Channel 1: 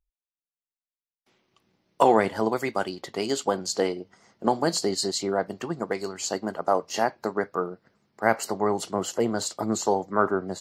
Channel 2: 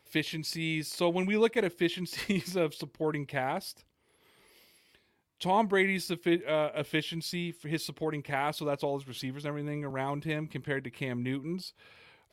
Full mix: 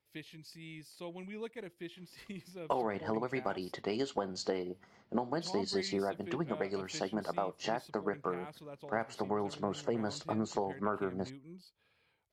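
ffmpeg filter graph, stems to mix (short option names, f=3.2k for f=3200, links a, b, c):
-filter_complex "[0:a]lowpass=4k,acompressor=threshold=-27dB:ratio=5,adelay=700,volume=-4dB[a];[1:a]volume=-17.5dB[b];[a][b]amix=inputs=2:normalize=0,lowshelf=f=170:g=4.5"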